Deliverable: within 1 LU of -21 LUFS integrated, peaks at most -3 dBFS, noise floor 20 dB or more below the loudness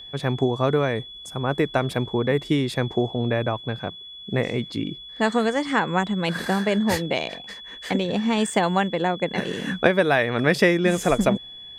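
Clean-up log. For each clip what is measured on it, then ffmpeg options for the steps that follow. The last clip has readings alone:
steady tone 3400 Hz; tone level -38 dBFS; loudness -23.5 LUFS; peak -4.0 dBFS; loudness target -21.0 LUFS
-> -af "bandreject=f=3.4k:w=30"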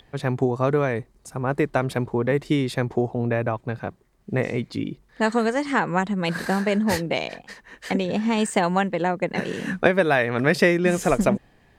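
steady tone none; loudness -23.5 LUFS; peak -4.0 dBFS; loudness target -21.0 LUFS
-> -af "volume=2.5dB,alimiter=limit=-3dB:level=0:latency=1"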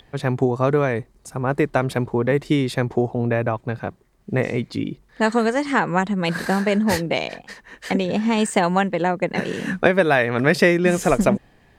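loudness -21.0 LUFS; peak -3.0 dBFS; noise floor -56 dBFS

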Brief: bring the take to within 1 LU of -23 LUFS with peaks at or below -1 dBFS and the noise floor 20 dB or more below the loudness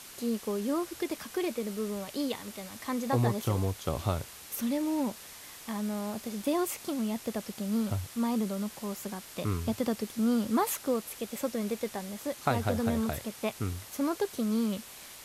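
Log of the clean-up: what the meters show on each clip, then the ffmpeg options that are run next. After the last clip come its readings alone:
noise floor -48 dBFS; noise floor target -53 dBFS; loudness -32.5 LUFS; peak -12.0 dBFS; loudness target -23.0 LUFS
-> -af "afftdn=nr=6:nf=-48"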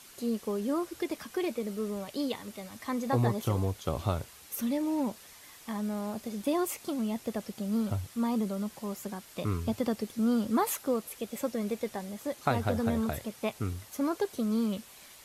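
noise floor -53 dBFS; loudness -32.5 LUFS; peak -12.0 dBFS; loudness target -23.0 LUFS
-> -af "volume=9.5dB"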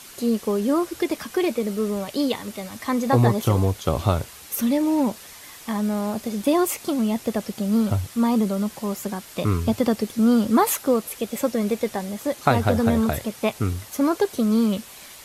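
loudness -23.0 LUFS; peak -2.5 dBFS; noise floor -43 dBFS

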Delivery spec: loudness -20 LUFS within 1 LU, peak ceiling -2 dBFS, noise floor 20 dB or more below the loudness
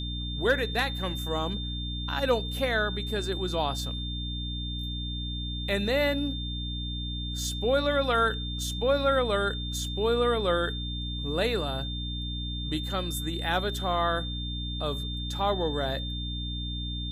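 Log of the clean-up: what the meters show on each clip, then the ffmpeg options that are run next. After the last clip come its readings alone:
hum 60 Hz; harmonics up to 300 Hz; hum level -32 dBFS; steady tone 3600 Hz; tone level -36 dBFS; loudness -29.0 LUFS; peak -13.0 dBFS; loudness target -20.0 LUFS
-> -af "bandreject=f=60:t=h:w=6,bandreject=f=120:t=h:w=6,bandreject=f=180:t=h:w=6,bandreject=f=240:t=h:w=6,bandreject=f=300:t=h:w=6"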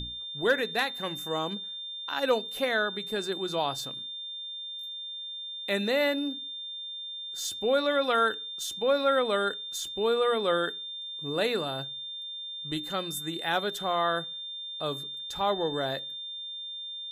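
hum none; steady tone 3600 Hz; tone level -36 dBFS
-> -af "bandreject=f=3.6k:w=30"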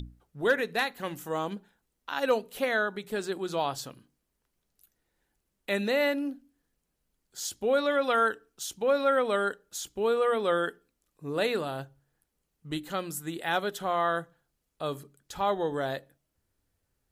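steady tone none; loudness -29.5 LUFS; peak -14.5 dBFS; loudness target -20.0 LUFS
-> -af "volume=9.5dB"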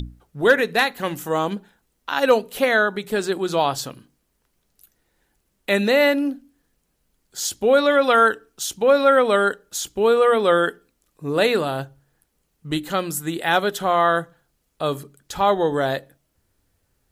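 loudness -20.0 LUFS; peak -5.0 dBFS; noise floor -71 dBFS

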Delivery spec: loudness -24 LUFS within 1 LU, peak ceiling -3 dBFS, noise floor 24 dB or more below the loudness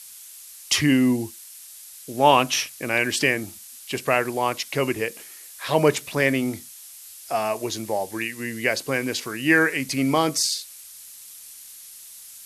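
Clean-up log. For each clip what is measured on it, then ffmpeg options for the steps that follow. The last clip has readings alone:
noise floor -44 dBFS; noise floor target -47 dBFS; loudness -22.5 LUFS; peak -2.5 dBFS; loudness target -24.0 LUFS
-> -af "afftdn=nr=6:nf=-44"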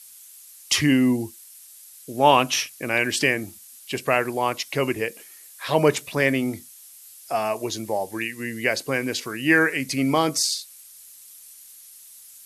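noise floor -47 dBFS; loudness -22.5 LUFS; peak -2.5 dBFS; loudness target -24.0 LUFS
-> -af "volume=-1.5dB"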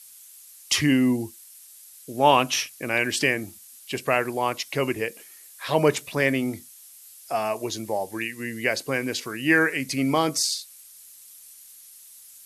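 loudness -24.0 LUFS; peak -4.0 dBFS; noise floor -48 dBFS

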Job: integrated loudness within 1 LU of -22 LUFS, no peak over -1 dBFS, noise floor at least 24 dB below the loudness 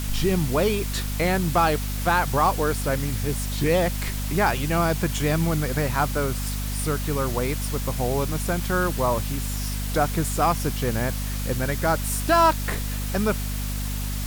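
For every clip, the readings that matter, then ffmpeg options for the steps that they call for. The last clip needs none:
hum 50 Hz; harmonics up to 250 Hz; hum level -26 dBFS; noise floor -28 dBFS; noise floor target -48 dBFS; loudness -24.0 LUFS; peak -7.5 dBFS; loudness target -22.0 LUFS
-> -af "bandreject=f=50:t=h:w=4,bandreject=f=100:t=h:w=4,bandreject=f=150:t=h:w=4,bandreject=f=200:t=h:w=4,bandreject=f=250:t=h:w=4"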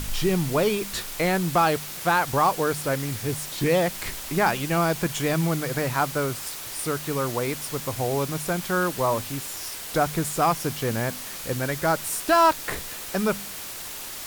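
hum none; noise floor -36 dBFS; noise floor target -49 dBFS
-> -af "afftdn=nr=13:nf=-36"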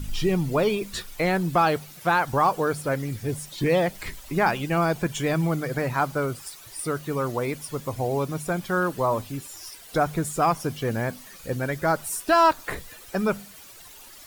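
noise floor -46 dBFS; noise floor target -50 dBFS
-> -af "afftdn=nr=6:nf=-46"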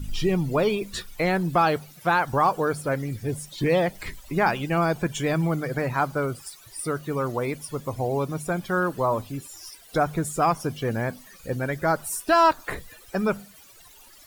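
noise floor -50 dBFS; loudness -25.5 LUFS; peak -8.5 dBFS; loudness target -22.0 LUFS
-> -af "volume=3.5dB"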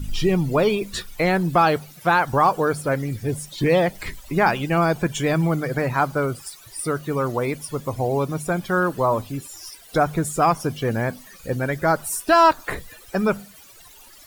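loudness -22.0 LUFS; peak -5.0 dBFS; noise floor -47 dBFS

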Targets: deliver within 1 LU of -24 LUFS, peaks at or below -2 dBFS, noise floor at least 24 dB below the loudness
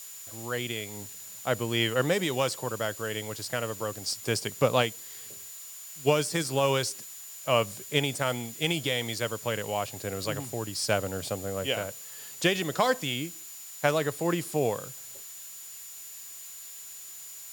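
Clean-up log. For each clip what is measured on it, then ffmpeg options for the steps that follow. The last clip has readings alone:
steady tone 7000 Hz; tone level -45 dBFS; noise floor -44 dBFS; noise floor target -54 dBFS; loudness -29.5 LUFS; peak -8.0 dBFS; loudness target -24.0 LUFS
-> -af "bandreject=f=7k:w=30"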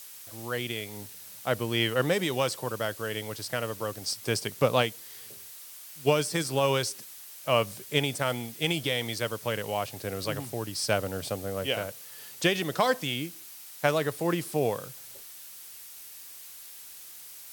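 steady tone none; noise floor -46 dBFS; noise floor target -54 dBFS
-> -af "afftdn=nr=8:nf=-46"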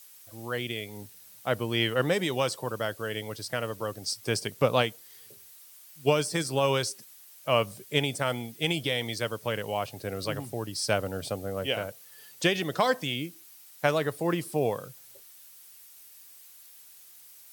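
noise floor -52 dBFS; noise floor target -54 dBFS
-> -af "afftdn=nr=6:nf=-52"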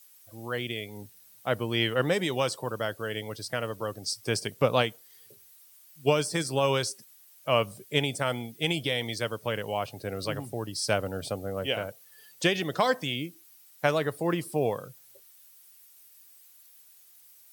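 noise floor -56 dBFS; loudness -29.5 LUFS; peak -8.0 dBFS; loudness target -24.0 LUFS
-> -af "volume=5.5dB"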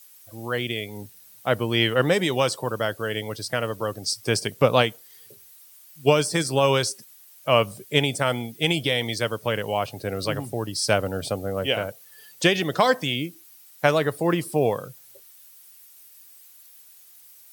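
loudness -24.0 LUFS; peak -2.5 dBFS; noise floor -51 dBFS

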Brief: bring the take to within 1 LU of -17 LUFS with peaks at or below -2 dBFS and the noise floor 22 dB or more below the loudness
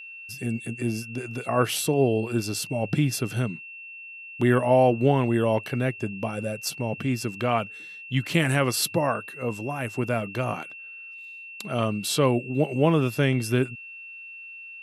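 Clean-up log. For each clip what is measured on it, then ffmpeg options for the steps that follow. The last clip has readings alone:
steady tone 2700 Hz; tone level -39 dBFS; loudness -25.5 LUFS; peak -8.0 dBFS; loudness target -17.0 LUFS
-> -af "bandreject=f=2.7k:w=30"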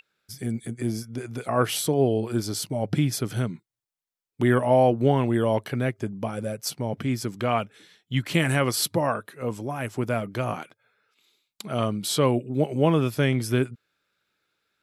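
steady tone none; loudness -25.5 LUFS; peak -8.0 dBFS; loudness target -17.0 LUFS
-> -af "volume=8.5dB,alimiter=limit=-2dB:level=0:latency=1"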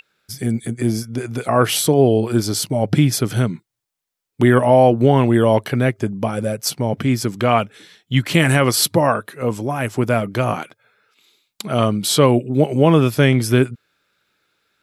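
loudness -17.5 LUFS; peak -2.0 dBFS; noise floor -81 dBFS

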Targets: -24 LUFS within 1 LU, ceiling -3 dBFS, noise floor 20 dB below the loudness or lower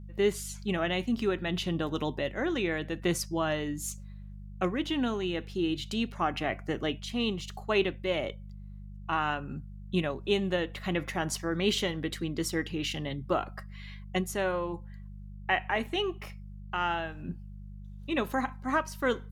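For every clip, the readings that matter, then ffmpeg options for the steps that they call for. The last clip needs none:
hum 50 Hz; harmonics up to 200 Hz; hum level -41 dBFS; loudness -31.5 LUFS; peak -14.0 dBFS; loudness target -24.0 LUFS
-> -af "bandreject=f=50:t=h:w=4,bandreject=f=100:t=h:w=4,bandreject=f=150:t=h:w=4,bandreject=f=200:t=h:w=4"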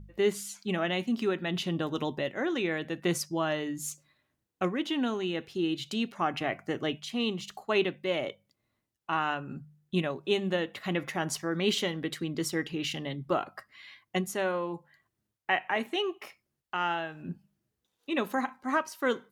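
hum none; loudness -31.5 LUFS; peak -13.5 dBFS; loudness target -24.0 LUFS
-> -af "volume=7.5dB"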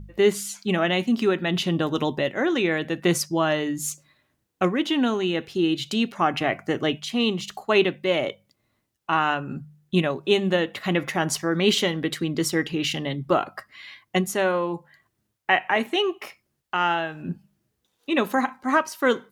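loudness -24.0 LUFS; peak -6.0 dBFS; noise floor -76 dBFS

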